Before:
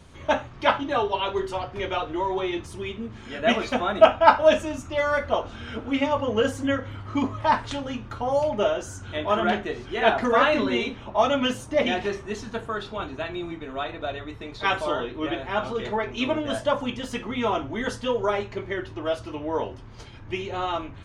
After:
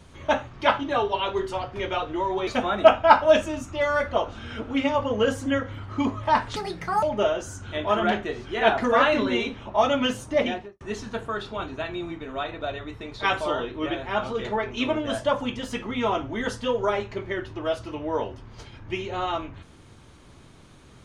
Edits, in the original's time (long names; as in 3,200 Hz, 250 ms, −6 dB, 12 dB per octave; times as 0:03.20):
0:02.47–0:03.64: remove
0:07.73–0:08.43: play speed 150%
0:11.76–0:12.21: fade out and dull